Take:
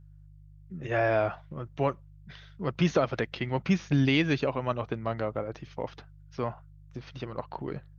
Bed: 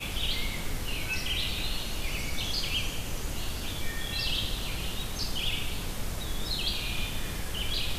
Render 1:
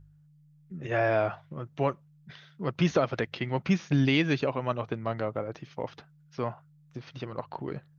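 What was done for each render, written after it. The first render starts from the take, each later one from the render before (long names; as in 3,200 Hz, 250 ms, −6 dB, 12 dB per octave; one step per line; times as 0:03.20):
hum removal 50 Hz, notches 2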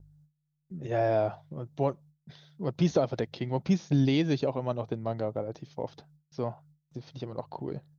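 noise gate with hold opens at −54 dBFS
flat-topped bell 1,800 Hz −10 dB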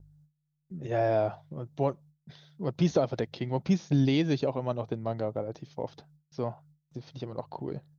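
no processing that can be heard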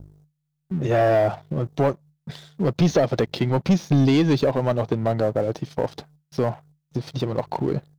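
in parallel at +2 dB: downward compressor 6 to 1, threshold −34 dBFS, peak gain reduction 13.5 dB
on the sum: leveller curve on the samples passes 2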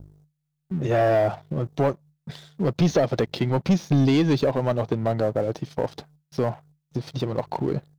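level −1.5 dB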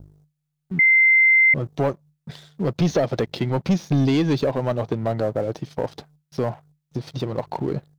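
0:00.79–0:01.54: beep over 2,080 Hz −11.5 dBFS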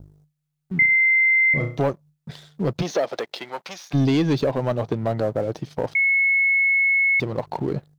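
0:00.78–0:01.82: flutter between parallel walls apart 5.8 metres, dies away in 0.38 s
0:02.81–0:03.93: high-pass filter 350 Hz → 1,200 Hz
0:05.95–0:07.20: beep over 2,190 Hz −15.5 dBFS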